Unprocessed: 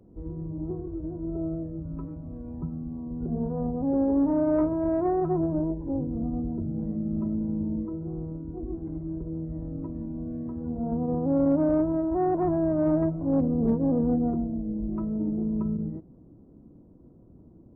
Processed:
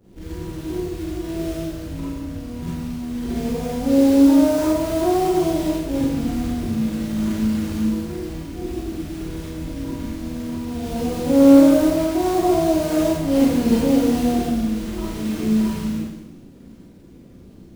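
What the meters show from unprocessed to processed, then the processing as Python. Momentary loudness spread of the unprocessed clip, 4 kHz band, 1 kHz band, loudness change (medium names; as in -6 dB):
12 LU, no reading, +8.0 dB, +8.0 dB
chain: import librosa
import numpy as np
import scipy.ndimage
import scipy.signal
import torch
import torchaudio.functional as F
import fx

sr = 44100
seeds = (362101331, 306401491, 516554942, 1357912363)

y = fx.quant_float(x, sr, bits=2)
y = fx.rev_schroeder(y, sr, rt60_s=1.0, comb_ms=32, drr_db=-9.0)
y = F.gain(torch.from_numpy(y), -1.0).numpy()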